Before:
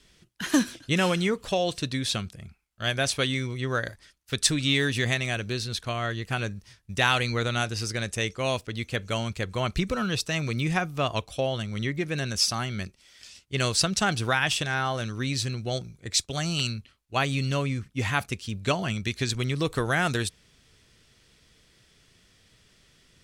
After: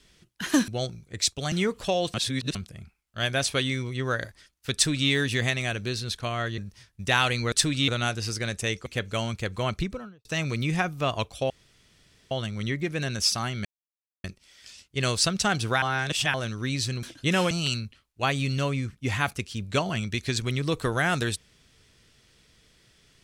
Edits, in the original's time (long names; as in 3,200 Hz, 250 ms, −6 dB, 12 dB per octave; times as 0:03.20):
0:00.68–0:01.16: swap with 0:15.60–0:16.44
0:01.78–0:02.19: reverse
0:04.38–0:04.74: duplicate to 0:07.42
0:06.22–0:06.48: remove
0:08.40–0:08.83: remove
0:09.61–0:10.22: fade out and dull
0:11.47: splice in room tone 0.81 s
0:12.81: splice in silence 0.59 s
0:14.39–0:14.91: reverse